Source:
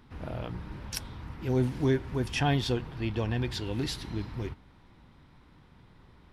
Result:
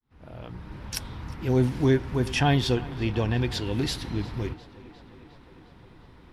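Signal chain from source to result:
fade in at the beginning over 1.13 s
on a send: tape delay 355 ms, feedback 79%, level −19 dB, low-pass 5,000 Hz
on the sum: level +4.5 dB

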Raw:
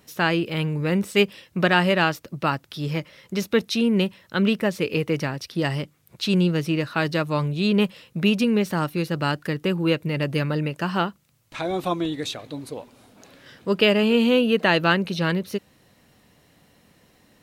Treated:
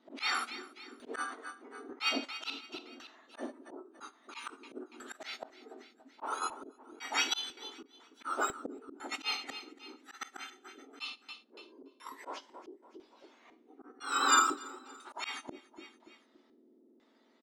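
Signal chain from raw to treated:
frequency axis turned over on the octave scale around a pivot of 1,900 Hz
double-tracking delay 22 ms −11.5 dB
auto-filter low-pass square 1 Hz 370–3,900 Hz
four-comb reverb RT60 0.41 s, combs from 29 ms, DRR 11.5 dB
in parallel at −7.5 dB: soft clipping −21 dBFS, distortion −12 dB
on the sum: noise gate −31 dBFS, range −14 dB
on a send: repeating echo 285 ms, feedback 47%, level −23.5 dB
on the sum: volume swells 290 ms

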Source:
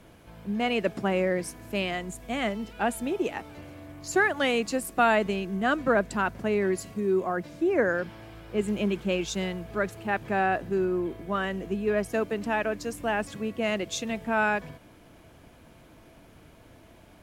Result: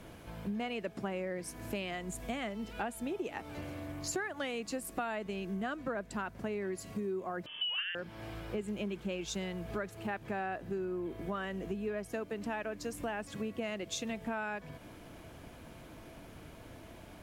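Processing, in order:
downward compressor 6 to 1, threshold −37 dBFS, peak gain reduction 18.5 dB
0:07.46–0:07.95: voice inversion scrambler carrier 3,300 Hz
level +2 dB

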